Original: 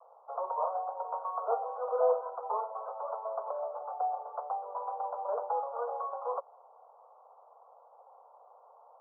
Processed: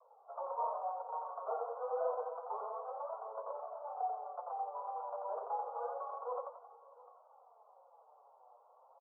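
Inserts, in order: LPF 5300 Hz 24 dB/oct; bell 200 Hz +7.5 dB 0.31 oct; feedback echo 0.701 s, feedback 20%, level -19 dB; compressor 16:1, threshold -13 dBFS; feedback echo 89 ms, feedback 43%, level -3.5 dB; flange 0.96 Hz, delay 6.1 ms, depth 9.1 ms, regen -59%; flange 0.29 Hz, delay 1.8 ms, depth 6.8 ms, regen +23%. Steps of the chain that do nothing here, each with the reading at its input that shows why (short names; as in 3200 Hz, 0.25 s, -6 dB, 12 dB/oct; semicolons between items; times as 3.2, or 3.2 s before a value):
LPF 5300 Hz: input band ends at 1400 Hz; bell 200 Hz: input band starts at 380 Hz; compressor, threshold -13 dBFS: input peak -16.0 dBFS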